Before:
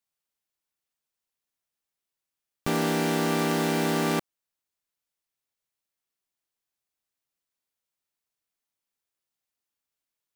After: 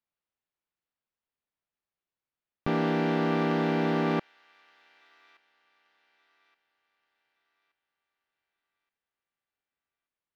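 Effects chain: air absorption 300 m; on a send: thin delay 1.174 s, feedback 38%, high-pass 1700 Hz, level -22 dB

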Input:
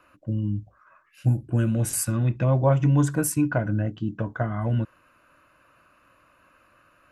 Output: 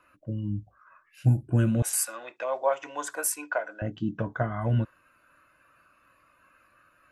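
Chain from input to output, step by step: spectral noise reduction 6 dB; 1.82–3.82 HPF 540 Hz 24 dB/oct

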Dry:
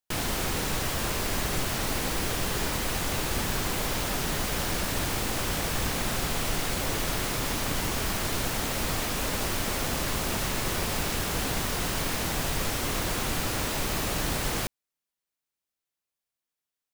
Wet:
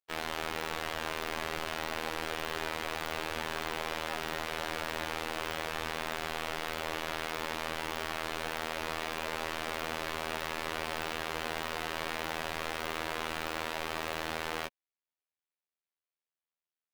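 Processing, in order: three-band isolator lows -14 dB, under 340 Hz, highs -15 dB, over 3900 Hz; in parallel at -6 dB: bit-crush 7-bit; on the sum: robotiser 80 Hz; gain -4 dB

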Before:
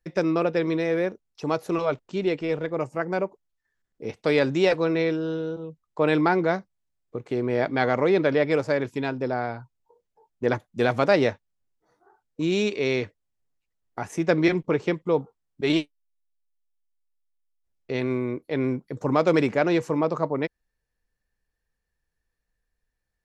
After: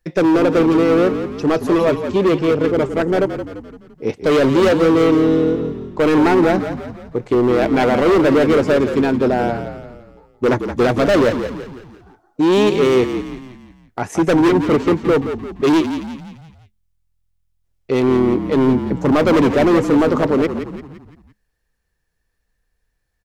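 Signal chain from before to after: dynamic EQ 320 Hz, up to +7 dB, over -36 dBFS, Q 0.87; hard clip -19 dBFS, distortion -7 dB; frequency-shifting echo 0.171 s, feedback 48%, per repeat -42 Hz, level -9 dB; gain +8 dB

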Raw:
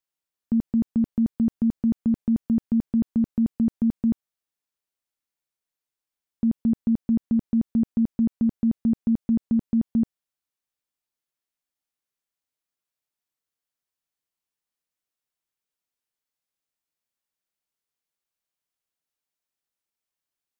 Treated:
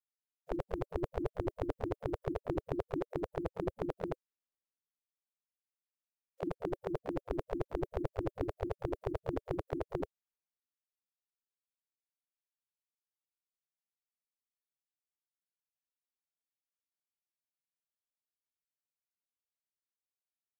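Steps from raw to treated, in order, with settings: reverb removal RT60 0.6 s; harmoniser +4 st -16 dB, +5 st -15 dB, +7 st -14 dB; spectral gate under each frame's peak -20 dB weak; gain +11 dB

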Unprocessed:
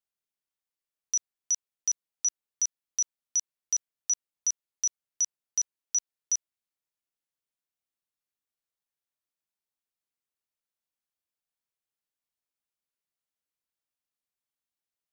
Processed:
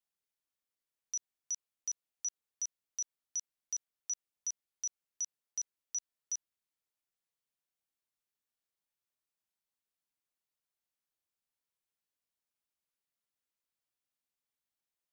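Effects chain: limiter -29 dBFS, peak gain reduction 8.5 dB; gain -1.5 dB

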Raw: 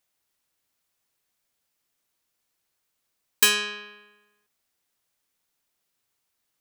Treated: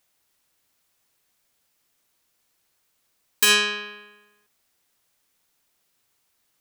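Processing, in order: limiter -14 dBFS, peak gain reduction 9 dB; gain +7 dB

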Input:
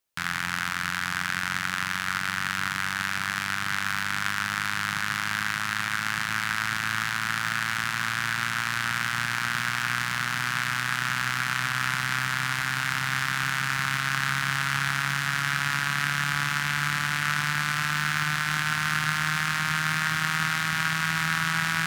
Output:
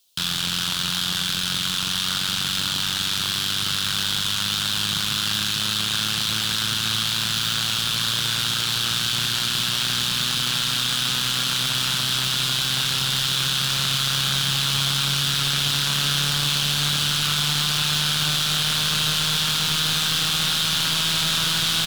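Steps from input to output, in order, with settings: resonant high shelf 2600 Hz +10 dB, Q 3; soft clip -24.5 dBFS, distortion -1 dB; doubler 28 ms -12 dB; gain +7.5 dB

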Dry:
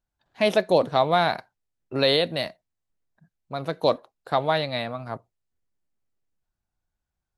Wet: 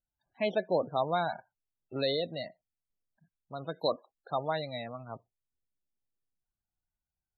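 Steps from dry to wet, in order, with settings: 3.61–4.35 high shelf 2900 Hz +9.5 dB; loudest bins only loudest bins 32; gain -9 dB

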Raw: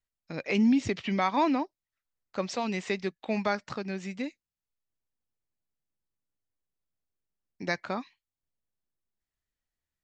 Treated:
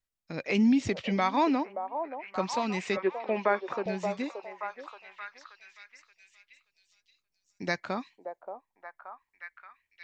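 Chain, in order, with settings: 2.97–3.86 speaker cabinet 290–2500 Hz, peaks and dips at 370 Hz +7 dB, 540 Hz +6 dB, 1000 Hz +6 dB, 1700 Hz +3 dB; delay with a stepping band-pass 0.577 s, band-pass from 630 Hz, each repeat 0.7 oct, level -4 dB

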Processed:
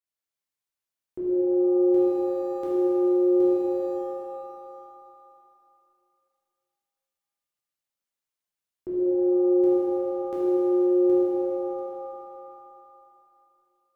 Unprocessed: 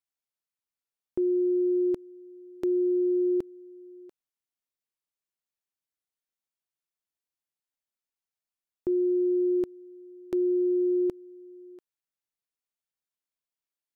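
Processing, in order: 1.68–3.96 sample gate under -55.5 dBFS; shimmer reverb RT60 2.8 s, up +7 st, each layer -8 dB, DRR -9 dB; gain -7 dB

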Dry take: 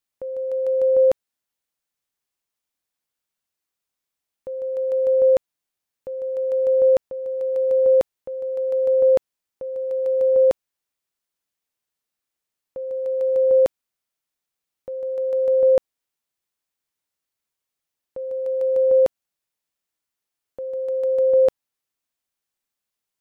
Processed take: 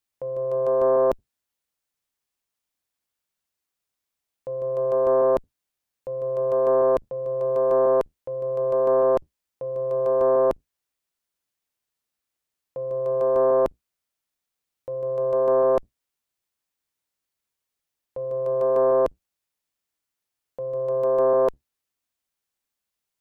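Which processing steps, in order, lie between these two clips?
octaver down 2 oct, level -5 dB; limiter -14 dBFS, peak gain reduction 4 dB; Doppler distortion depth 0.58 ms

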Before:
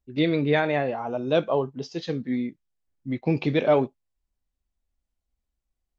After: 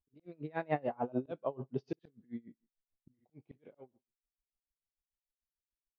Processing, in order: Doppler pass-by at 1.32, 19 m/s, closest 9.5 m; LPF 1100 Hz 6 dB/oct; auto swell 0.611 s; on a send: feedback echo 62 ms, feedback 30%, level -19 dB; on the sum: dB-linear tremolo 6.8 Hz, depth 29 dB; gain +2.5 dB

